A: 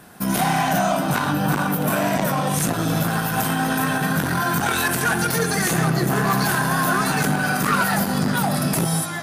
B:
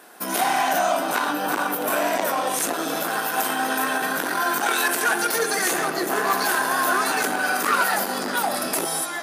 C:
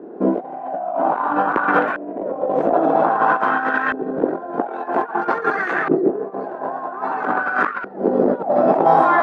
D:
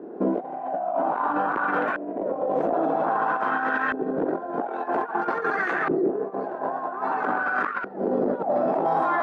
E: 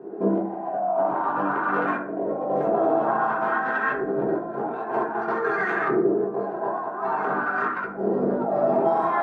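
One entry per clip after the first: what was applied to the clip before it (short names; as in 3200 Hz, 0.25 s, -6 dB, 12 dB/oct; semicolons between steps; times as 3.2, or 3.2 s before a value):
HPF 310 Hz 24 dB/oct
high shelf 8800 Hz -11.5 dB; negative-ratio compressor -29 dBFS, ratio -0.5; LFO low-pass saw up 0.51 Hz 360–1800 Hz; gain +8.5 dB
limiter -12.5 dBFS, peak gain reduction 10 dB; gain -2.5 dB
reverb RT60 0.60 s, pre-delay 4 ms, DRR -3 dB; gain -4.5 dB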